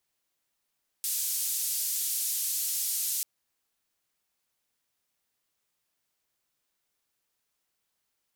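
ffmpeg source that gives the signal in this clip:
ffmpeg -f lavfi -i "anoisesrc=color=white:duration=2.19:sample_rate=44100:seed=1,highpass=frequency=5700,lowpass=frequency=15000,volume=-21.7dB" out.wav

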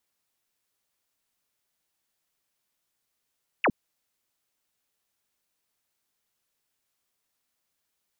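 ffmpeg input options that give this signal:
ffmpeg -f lavfi -i "aevalsrc='0.119*clip(t/0.002,0,1)*clip((0.06-t)/0.002,0,1)*sin(2*PI*3000*0.06/log(160/3000)*(exp(log(160/3000)*t/0.06)-1))':duration=0.06:sample_rate=44100" out.wav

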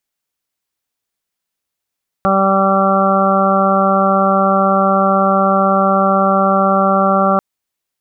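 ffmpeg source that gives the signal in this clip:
ffmpeg -f lavfi -i "aevalsrc='0.158*sin(2*PI*194*t)+0.075*sin(2*PI*388*t)+0.168*sin(2*PI*582*t)+0.141*sin(2*PI*776*t)+0.02*sin(2*PI*970*t)+0.158*sin(2*PI*1164*t)+0.119*sin(2*PI*1358*t)':duration=5.14:sample_rate=44100" out.wav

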